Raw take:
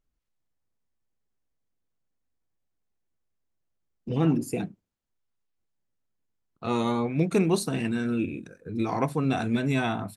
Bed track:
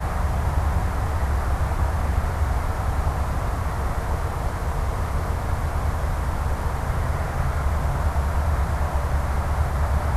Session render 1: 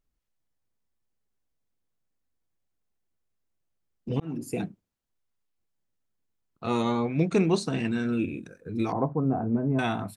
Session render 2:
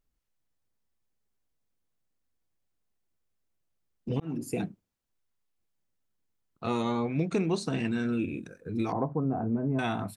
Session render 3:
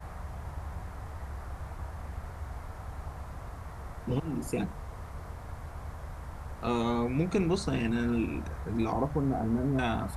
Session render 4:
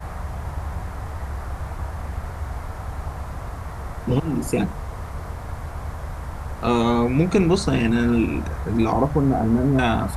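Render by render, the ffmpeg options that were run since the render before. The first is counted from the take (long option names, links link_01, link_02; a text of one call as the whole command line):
ffmpeg -i in.wav -filter_complex "[0:a]asettb=1/sr,asplit=3[link_01][link_02][link_03];[link_01]atrim=end=6.824[link_04];[link_02]atrim=start=6.82:end=8.13,asetpts=PTS-STARTPTS,afade=type=in:duration=0.004:curve=qsin,afade=type=out:start_time=1.306:duration=0.004:curve=qsin,lowpass=frequency=7400:width=0.5412,lowpass=frequency=7400:width=1.3066[link_05];[link_03]atrim=start=8.126[link_06];[link_04][link_05]acrossfade=duration=0.004:curve1=hsin:curve2=qsin[link_07];[link_07][link_06]acrossfade=duration=0.004:curve1=qsin:curve2=hsin,asettb=1/sr,asplit=3[link_08][link_09][link_10];[link_08]atrim=end=8.924[link_11];[link_09]atrim=start=8.92:end=9.79,asetpts=PTS-STARTPTS,afade=type=in:duration=0.004:curve=qsin,afade=type=out:start_time=0.866:duration=0.004:curve=qsin,lowpass=frequency=1000:width=0.5412,lowpass=frequency=1000:width=1.3066[link_12];[link_10]atrim=start=9.786[link_13];[link_11][link_12]acrossfade=duration=0.004:curve1=hsin:curve2=qsin[link_14];[link_14][link_13]acrossfade=duration=0.004:curve1=qsin:curve2=hsin,asplit=2[link_15][link_16];[link_15]atrim=end=4.2,asetpts=PTS-STARTPTS,afade=type=out:start_time=4.196:duration=0.004:curve=hsin[link_17];[link_16]atrim=start=4.2,asetpts=PTS-STARTPTS,afade=type=in:duration=0.4[link_18];[link_17][link_18]concat=n=2:v=0:a=1" out.wav
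ffmpeg -i in.wav -af "acompressor=threshold=-26dB:ratio=2.5" out.wav
ffmpeg -i in.wav -i bed.wav -filter_complex "[1:a]volume=-17dB[link_01];[0:a][link_01]amix=inputs=2:normalize=0" out.wav
ffmpeg -i in.wav -af "volume=10dB" out.wav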